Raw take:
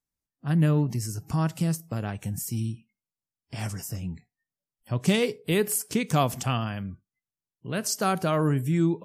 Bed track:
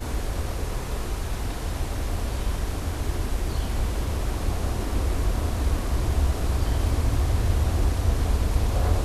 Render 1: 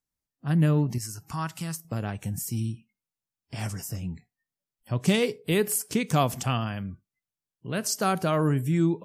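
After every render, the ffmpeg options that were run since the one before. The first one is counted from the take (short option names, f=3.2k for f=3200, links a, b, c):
-filter_complex "[0:a]asettb=1/sr,asplit=3[a][b][c];[a]atrim=end=0.984[d];[b]atrim=start=0.98:end=1.85,asetpts=PTS-STARTPTS,afade=t=in:d=0.004:c=qsin,afade=t=out:st=0.866:d=0.004:c=qsin,lowshelf=f=760:t=q:w=1.5:g=-8[e];[c]atrim=start=1.846[f];[d][e]acrossfade=d=0.004:c1=hsin:c2=qsin[g];[g][f]acrossfade=d=0.004:c1=qsin:c2=hsin"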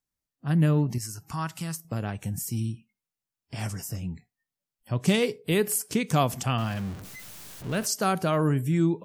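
-filter_complex "[0:a]asettb=1/sr,asplit=3[a][b][c];[a]atrim=end=6.584[d];[b]atrim=start=6.58:end=7.86,asetpts=PTS-STARTPTS,afade=t=in:d=0.004:c=qsin,afade=t=out:st=1.276:d=0.004:c=qsin,aeval=exprs='val(0)+0.5*0.0168*sgn(val(0))':c=same[e];[c]atrim=start=7.856[f];[d][e]acrossfade=d=0.004:c1=hsin:c2=qsin[g];[g][f]acrossfade=d=0.004:c1=qsin:c2=hsin"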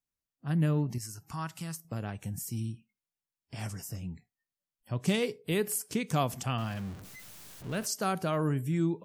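-af "volume=-5.5dB"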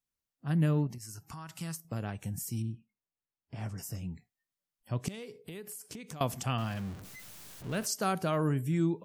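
-filter_complex "[0:a]asettb=1/sr,asplit=3[a][b][c];[a]atrim=end=0.874[d];[b]atrim=start=0.87:end=1.49,asetpts=PTS-STARTPTS,afade=t=in:d=0.004:c=qsin,afade=t=out:st=0.616:d=0.004:c=qsin,acompressor=threshold=-40dB:ratio=6:attack=3.2:release=140:knee=1:detection=peak[e];[c]atrim=start=1.486[f];[d][e]acrossfade=d=0.004:c1=hsin:c2=qsin[g];[g][f]acrossfade=d=0.004:c1=qsin:c2=hsin,asettb=1/sr,asplit=3[h][i][j];[h]atrim=end=2.624[k];[i]atrim=start=2.62:end=3.78,asetpts=PTS-STARTPTS,afade=t=in:d=0.004:c=qsin,afade=t=out:st=1.156:d=0.004:c=qsin,lowpass=f=1.3k:p=1[l];[j]atrim=start=3.776[m];[k][l]acrossfade=d=0.004:c1=hsin:c2=qsin[n];[n][m]acrossfade=d=0.004:c1=qsin:c2=hsin,asettb=1/sr,asplit=3[o][p][q];[o]atrim=end=5.084[r];[p]atrim=start=5.08:end=6.21,asetpts=PTS-STARTPTS,afade=t=in:d=0.004:c=qsin,afade=t=out:st=1.126:d=0.004:c=qsin,acompressor=threshold=-40dB:ratio=12:attack=3.2:release=140:knee=1:detection=peak[s];[q]atrim=start=6.206[t];[r][s]acrossfade=d=0.004:c1=hsin:c2=qsin[u];[u][t]acrossfade=d=0.004:c1=qsin:c2=hsin"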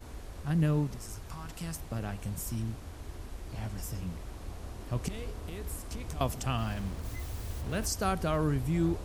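-filter_complex "[1:a]volume=-16dB[a];[0:a][a]amix=inputs=2:normalize=0"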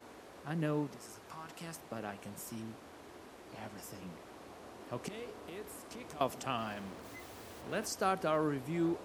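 -af "highpass=290,highshelf=f=3.9k:g=-8.5"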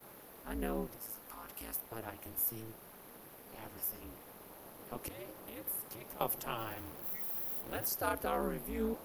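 -af "aexciter=amount=9.5:drive=8.6:freq=11k,aeval=exprs='val(0)*sin(2*PI*110*n/s)':c=same"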